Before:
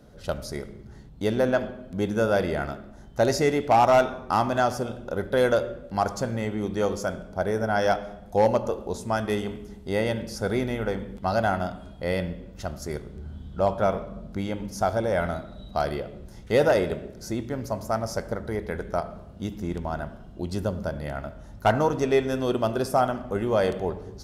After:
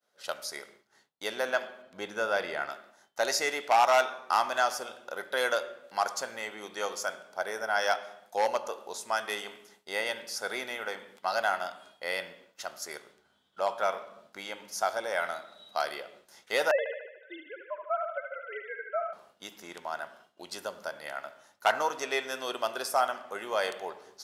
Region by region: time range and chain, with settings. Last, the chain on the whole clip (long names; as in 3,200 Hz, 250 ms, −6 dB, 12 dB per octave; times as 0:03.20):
0:01.82–0:02.70: low-pass filter 3,900 Hz 6 dB per octave + low-shelf EQ 160 Hz +9 dB
0:16.71–0:19.13: three sine waves on the formant tracks + delay with a band-pass on its return 74 ms, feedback 59%, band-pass 1,300 Hz, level −4 dB
whole clip: Bessel high-pass filter 1,200 Hz, order 2; downward expander −55 dBFS; level +2.5 dB